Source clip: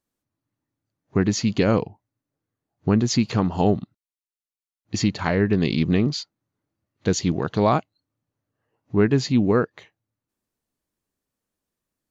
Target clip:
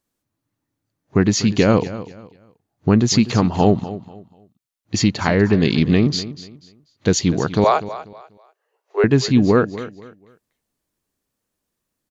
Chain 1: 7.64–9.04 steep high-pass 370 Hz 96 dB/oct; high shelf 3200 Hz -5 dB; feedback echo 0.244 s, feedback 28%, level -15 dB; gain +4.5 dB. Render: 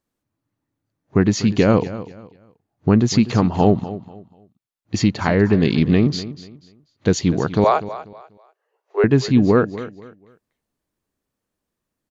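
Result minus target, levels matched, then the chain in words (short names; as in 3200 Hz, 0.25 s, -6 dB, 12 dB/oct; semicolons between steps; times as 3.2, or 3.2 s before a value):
8000 Hz band -5.5 dB
7.64–9.04 steep high-pass 370 Hz 96 dB/oct; high shelf 3200 Hz +2 dB; feedback echo 0.244 s, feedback 28%, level -15 dB; gain +4.5 dB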